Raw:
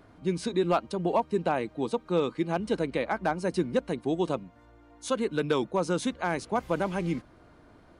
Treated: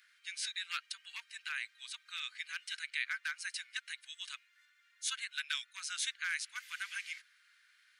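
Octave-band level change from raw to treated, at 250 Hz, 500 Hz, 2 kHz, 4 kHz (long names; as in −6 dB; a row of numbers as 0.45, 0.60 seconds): below −40 dB, below −40 dB, 0.0 dB, +2.5 dB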